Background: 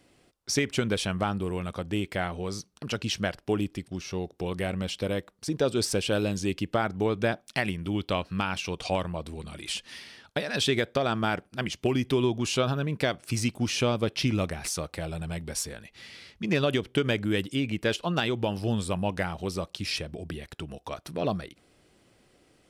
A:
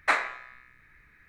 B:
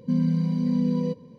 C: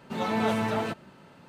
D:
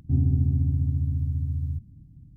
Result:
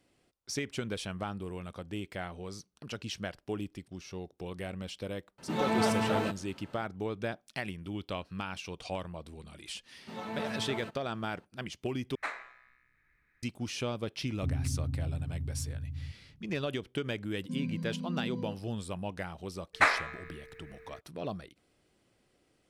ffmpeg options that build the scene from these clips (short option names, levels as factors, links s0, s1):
-filter_complex "[3:a]asplit=2[s0][s1];[1:a]asplit=2[s2][s3];[0:a]volume=0.355[s4];[s3]aeval=exprs='val(0)+0.00251*sin(2*PI*450*n/s)':c=same[s5];[s4]asplit=2[s6][s7];[s6]atrim=end=12.154[s8];[s2]atrim=end=1.28,asetpts=PTS-STARTPTS,volume=0.224[s9];[s7]atrim=start=13.426[s10];[s0]atrim=end=1.48,asetpts=PTS-STARTPTS,volume=0.794,afade=t=in:d=0.004:c=hsin,afade=t=out:st=1.476:d=0.004:c=hsin,adelay=5380[s11];[s1]atrim=end=1.48,asetpts=PTS-STARTPTS,volume=0.266,afade=t=in:d=0.004:c=hsin,afade=t=out:st=1.476:d=0.004:c=hsin,adelay=9970[s12];[4:a]atrim=end=2.36,asetpts=PTS-STARTPTS,volume=0.282,afade=t=in:d=0.004:c=hsin,afade=t=out:st=2.356:d=0.004:c=hsin,adelay=14330[s13];[2:a]atrim=end=1.38,asetpts=PTS-STARTPTS,volume=0.211,afade=t=in:d=0.004:c=hsin,afade=t=out:st=1.376:d=0.004:c=hsin,adelay=17410[s14];[s5]atrim=end=1.28,asetpts=PTS-STARTPTS,afade=t=in:d=0.02,afade=t=out:st=1.26:d=0.02,adelay=19730[s15];[s8][s9]acrossfade=d=0.004:c1=hsin:c2=hsin[s16];[s16][s10]acrossfade=d=0.004:c1=hsin:c2=hsin[s17];[s17][s11][s12][s13][s14][s15]amix=inputs=6:normalize=0"